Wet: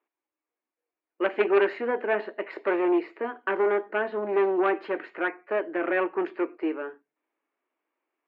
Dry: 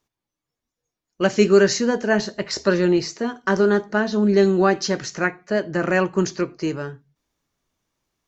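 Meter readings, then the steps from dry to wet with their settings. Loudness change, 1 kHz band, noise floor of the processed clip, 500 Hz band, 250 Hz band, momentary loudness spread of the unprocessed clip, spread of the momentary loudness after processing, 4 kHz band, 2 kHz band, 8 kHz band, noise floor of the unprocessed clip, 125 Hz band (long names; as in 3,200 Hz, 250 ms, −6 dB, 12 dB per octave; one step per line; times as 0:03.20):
−7.0 dB, −3.5 dB, below −85 dBFS, −5.5 dB, −9.5 dB, 10 LU, 8 LU, below −15 dB, −5.5 dB, can't be measured, below −85 dBFS, below −25 dB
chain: harmonic generator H 3 −8 dB, 4 −23 dB, 5 −14 dB, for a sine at −3.5 dBFS
elliptic band-pass filter 310–2,500 Hz, stop band 40 dB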